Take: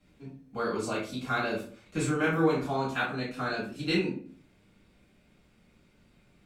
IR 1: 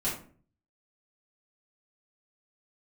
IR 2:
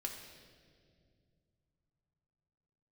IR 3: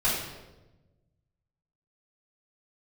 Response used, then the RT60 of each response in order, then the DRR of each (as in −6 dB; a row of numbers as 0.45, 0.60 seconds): 1; 0.45, 2.2, 1.1 seconds; −9.0, 0.5, −11.5 decibels